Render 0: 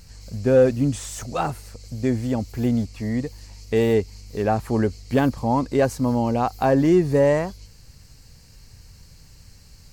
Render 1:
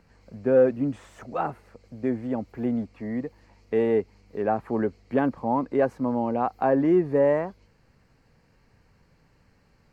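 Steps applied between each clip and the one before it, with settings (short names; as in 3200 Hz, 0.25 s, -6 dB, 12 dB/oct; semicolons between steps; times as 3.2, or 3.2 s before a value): three-band isolator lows -15 dB, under 180 Hz, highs -23 dB, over 2300 Hz; gain -2.5 dB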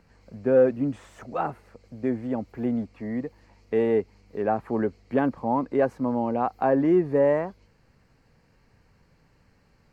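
nothing audible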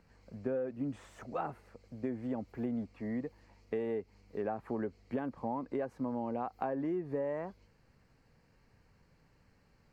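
compressor 12:1, threshold -26 dBFS, peak gain reduction 13 dB; gain -5.5 dB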